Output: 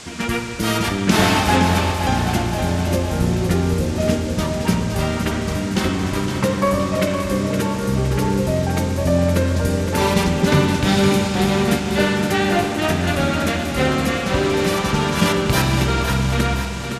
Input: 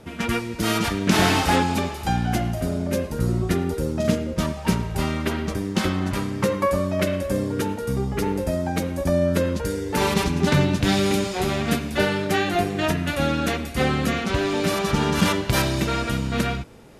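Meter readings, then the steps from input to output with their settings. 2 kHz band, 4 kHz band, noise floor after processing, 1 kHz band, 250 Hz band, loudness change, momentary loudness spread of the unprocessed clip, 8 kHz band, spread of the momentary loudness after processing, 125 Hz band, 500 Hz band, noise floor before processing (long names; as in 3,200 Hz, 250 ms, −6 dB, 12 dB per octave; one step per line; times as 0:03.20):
+4.0 dB, +4.0 dB, −24 dBFS, +4.0 dB, +4.0 dB, +4.0 dB, 6 LU, +4.5 dB, 5 LU, +5.0 dB, +3.5 dB, −33 dBFS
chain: repeating echo 515 ms, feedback 57%, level −8 dB
spring reverb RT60 2.9 s, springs 46 ms, chirp 75 ms, DRR 6 dB
noise in a band 580–7,900 Hz −41 dBFS
level +2 dB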